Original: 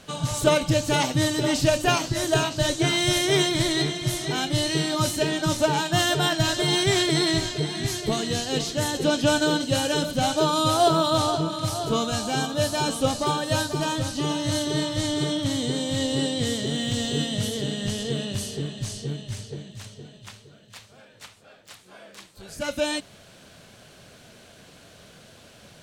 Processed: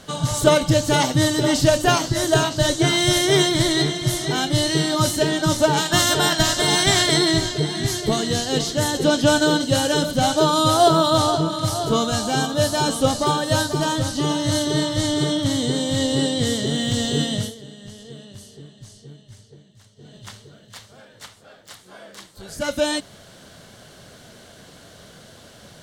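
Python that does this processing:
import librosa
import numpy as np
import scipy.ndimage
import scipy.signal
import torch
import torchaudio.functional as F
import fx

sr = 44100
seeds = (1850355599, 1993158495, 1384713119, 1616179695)

y = fx.spec_clip(x, sr, under_db=12, at=(5.76, 7.16), fade=0.02)
y = fx.edit(y, sr, fx.fade_down_up(start_s=17.34, length_s=2.83, db=-16.0, fade_s=0.21), tone=tone)
y = fx.peak_eq(y, sr, hz=2500.0, db=-10.0, octaves=0.2)
y = y * librosa.db_to_amplitude(4.5)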